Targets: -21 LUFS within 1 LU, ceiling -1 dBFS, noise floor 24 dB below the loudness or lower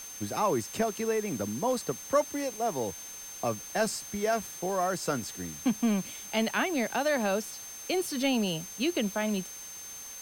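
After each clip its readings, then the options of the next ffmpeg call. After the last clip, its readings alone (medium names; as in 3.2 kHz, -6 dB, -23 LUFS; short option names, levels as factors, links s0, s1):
steady tone 6.3 kHz; tone level -42 dBFS; noise floor -43 dBFS; noise floor target -55 dBFS; loudness -30.5 LUFS; peak level -13.5 dBFS; loudness target -21.0 LUFS
-> -af "bandreject=f=6300:w=30"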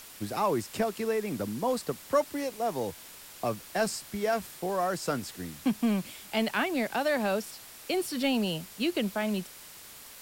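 steady tone not found; noise floor -49 dBFS; noise floor target -55 dBFS
-> -af "afftdn=nr=6:nf=-49"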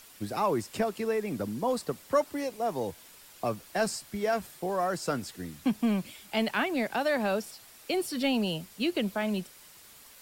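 noise floor -53 dBFS; noise floor target -55 dBFS
-> -af "afftdn=nr=6:nf=-53"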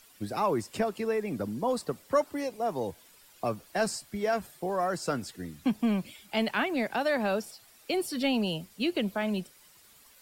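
noise floor -58 dBFS; loudness -31.0 LUFS; peak level -14.0 dBFS; loudness target -21.0 LUFS
-> -af "volume=3.16"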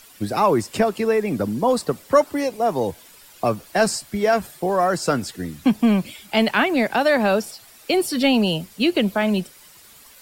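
loudness -21.0 LUFS; peak level -4.0 dBFS; noise floor -48 dBFS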